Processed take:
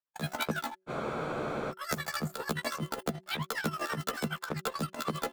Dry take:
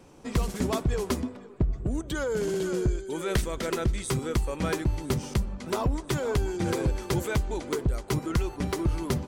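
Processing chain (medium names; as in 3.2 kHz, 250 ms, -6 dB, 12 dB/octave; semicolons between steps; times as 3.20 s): granular stretch 2×, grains 186 ms; gate -34 dBFS, range -43 dB; bass shelf 380 Hz -4 dB; wide varispeed 3.48×; tremolo 12 Hz, depth 76%; de-hum 187.7 Hz, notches 3; spectral freeze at 0.90 s, 0.80 s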